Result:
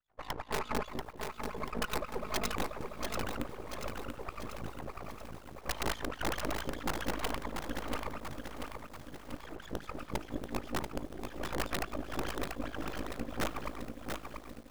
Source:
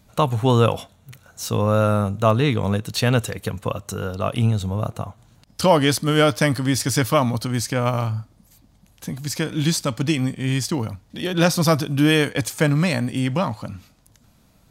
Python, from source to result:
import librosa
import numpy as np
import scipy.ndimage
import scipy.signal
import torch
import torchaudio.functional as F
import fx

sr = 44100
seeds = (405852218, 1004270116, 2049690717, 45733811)

y = fx.highpass(x, sr, hz=60.0, slope=6)
y = fx.band_shelf(y, sr, hz=4500.0, db=-15.5, octaves=2.3)
y = fx.resonator_bank(y, sr, root=41, chord='major', decay_s=0.52)
y = fx.echo_feedback(y, sr, ms=72, feedback_pct=48, wet_db=-13.0)
y = fx.room_shoebox(y, sr, seeds[0], volume_m3=260.0, walls='mixed', distance_m=5.7)
y = fx.filter_lfo_bandpass(y, sr, shape='sine', hz=4.9, low_hz=290.0, high_hz=3800.0, q=7.9)
y = fx.dynamic_eq(y, sr, hz=500.0, q=0.93, threshold_db=-44.0, ratio=4.0, max_db=-5)
y = y * np.sin(2.0 * np.pi * 27.0 * np.arange(len(y)) / sr)
y = (np.mod(10.0 ** (28.5 / 20.0) * y + 1.0, 2.0) - 1.0) / 10.0 ** (28.5 / 20.0)
y = fx.comb(y, sr, ms=4.7, depth=0.68, at=(0.5, 2.5))
y = np.maximum(y, 0.0)
y = fx.echo_crushed(y, sr, ms=687, feedback_pct=55, bits=10, wet_db=-5)
y = y * 10.0 ** (6.5 / 20.0)